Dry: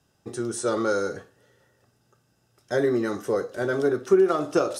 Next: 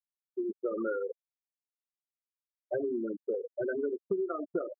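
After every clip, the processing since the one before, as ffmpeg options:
ffmpeg -i in.wav -af "afftfilt=real='re*gte(hypot(re,im),0.2)':imag='im*gte(hypot(re,im),0.2)':win_size=1024:overlap=0.75,highpass=140,acompressor=threshold=-30dB:ratio=6" out.wav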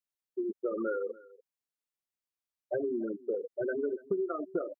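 ffmpeg -i in.wav -af "aecho=1:1:288:0.0841" out.wav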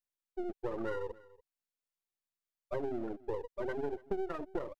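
ffmpeg -i in.wav -af "aeval=exprs='if(lt(val(0),0),0.251*val(0),val(0))':channel_layout=same,volume=-1dB" out.wav

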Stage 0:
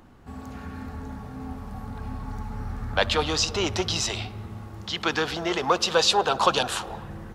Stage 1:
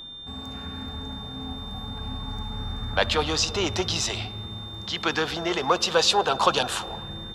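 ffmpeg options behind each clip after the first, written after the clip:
ffmpeg -i in.wav -af "aeval=exprs='val(0)+0.0126*sin(2*PI*3600*n/s)':channel_layout=same" out.wav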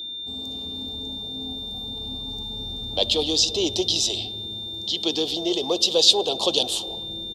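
ffmpeg -i in.wav -af "firequalizer=gain_entry='entry(170,0);entry(310,11);entry(670,4);entry(1500,-22);entry(3300,14);entry(6100,10)':delay=0.05:min_phase=1,volume=-6.5dB" out.wav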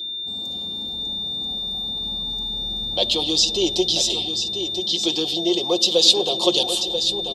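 ffmpeg -i in.wav -filter_complex "[0:a]aecho=1:1:5.6:0.65,asplit=2[link_01][link_02];[link_02]aecho=0:1:987:0.376[link_03];[link_01][link_03]amix=inputs=2:normalize=0" out.wav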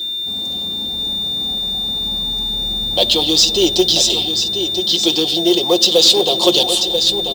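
ffmpeg -i in.wav -af "apsyclip=10dB,acrusher=bits=5:mode=log:mix=0:aa=0.000001,volume=-3.5dB" out.wav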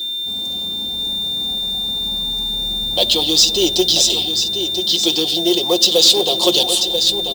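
ffmpeg -i in.wav -af "highshelf=frequency=5800:gain=6.5,volume=-2.5dB" out.wav

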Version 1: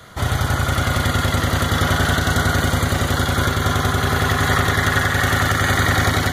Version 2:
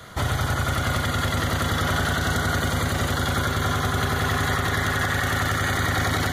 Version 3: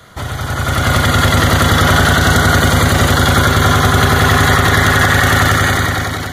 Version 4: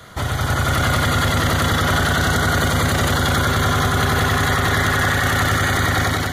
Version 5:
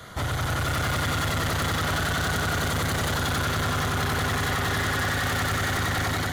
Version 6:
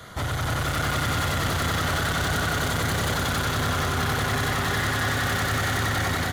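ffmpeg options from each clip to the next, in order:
ffmpeg -i in.wav -af "alimiter=limit=-14dB:level=0:latency=1:release=69" out.wav
ffmpeg -i in.wav -af "dynaudnorm=framelen=160:gausssize=9:maxgain=14dB,volume=1dB" out.wav
ffmpeg -i in.wav -af "alimiter=limit=-9.5dB:level=0:latency=1:release=27" out.wav
ffmpeg -i in.wav -af "asoftclip=type=tanh:threshold=-21.5dB,volume=-1.5dB" out.wav
ffmpeg -i in.wav -af "aecho=1:1:306:0.473" out.wav

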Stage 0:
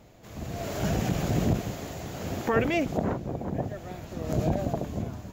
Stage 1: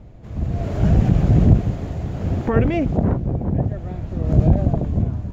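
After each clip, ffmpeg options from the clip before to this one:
ffmpeg -i in.wav -af "aemphasis=mode=reproduction:type=riaa,volume=1.5dB" out.wav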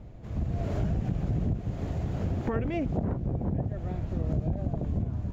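ffmpeg -i in.wav -af "acompressor=threshold=-22dB:ratio=6,volume=-3.5dB" out.wav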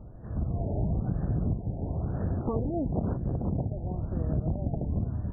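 ffmpeg -i in.wav -af "afftfilt=real='re*lt(b*sr/1024,900*pow(1900/900,0.5+0.5*sin(2*PI*1*pts/sr)))':imag='im*lt(b*sr/1024,900*pow(1900/900,0.5+0.5*sin(2*PI*1*pts/sr)))':win_size=1024:overlap=0.75" out.wav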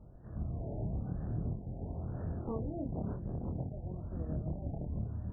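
ffmpeg -i in.wav -af "flanger=delay=22.5:depth=6:speed=0.52,volume=-5.5dB" out.wav

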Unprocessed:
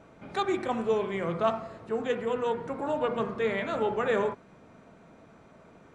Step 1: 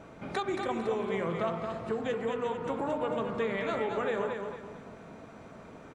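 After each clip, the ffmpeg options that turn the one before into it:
ffmpeg -i in.wav -af "acompressor=threshold=-34dB:ratio=6,aecho=1:1:225|450|675|900:0.531|0.196|0.0727|0.0269,volume=4.5dB" out.wav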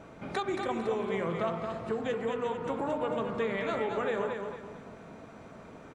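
ffmpeg -i in.wav -af anull out.wav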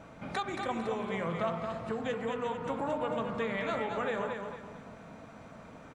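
ffmpeg -i in.wav -af "equalizer=frequency=380:width_type=o:width=0.43:gain=-8.5" out.wav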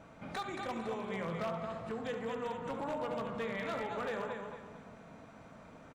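ffmpeg -i in.wav -af "aecho=1:1:72:0.282,aeval=exprs='0.0531*(abs(mod(val(0)/0.0531+3,4)-2)-1)':channel_layout=same,volume=-4.5dB" out.wav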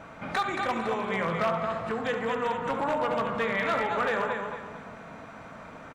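ffmpeg -i in.wav -af "equalizer=frequency=1500:width=0.6:gain=7,volume=6.5dB" out.wav

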